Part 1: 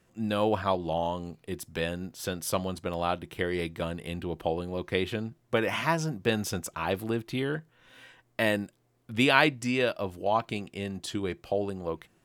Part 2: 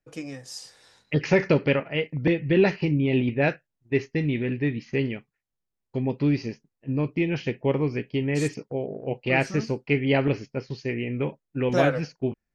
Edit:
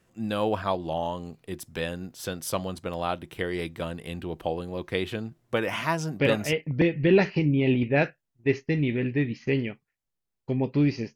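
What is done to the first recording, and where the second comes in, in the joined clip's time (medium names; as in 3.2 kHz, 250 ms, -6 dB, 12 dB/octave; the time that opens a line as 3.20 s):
part 1
6.36 s: go over to part 2 from 1.82 s, crossfade 0.34 s logarithmic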